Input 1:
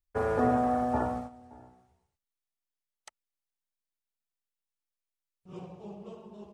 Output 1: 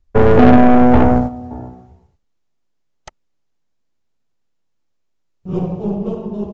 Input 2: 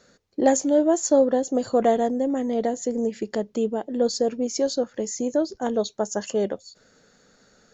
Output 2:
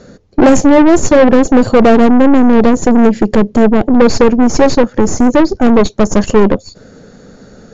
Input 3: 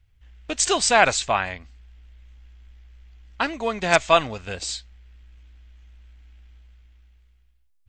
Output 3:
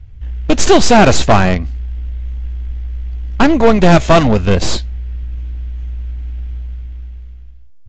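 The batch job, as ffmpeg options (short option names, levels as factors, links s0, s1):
-af "apsyclip=5.96,aeval=exprs='1.06*(cos(1*acos(clip(val(0)/1.06,-1,1)))-cos(1*PI/2))+0.0596*(cos(4*acos(clip(val(0)/1.06,-1,1)))-cos(4*PI/2))+0.237*(cos(6*acos(clip(val(0)/1.06,-1,1)))-cos(6*PI/2))+0.0211*(cos(8*acos(clip(val(0)/1.06,-1,1)))-cos(8*PI/2))':c=same,tiltshelf=f=730:g=8,aresample=16000,asoftclip=type=tanh:threshold=0.596,aresample=44100,volume=1.33"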